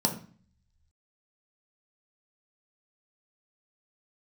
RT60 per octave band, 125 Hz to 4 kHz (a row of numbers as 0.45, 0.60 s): 1.1, 0.70, 0.40, 0.45, 0.45, 0.45 s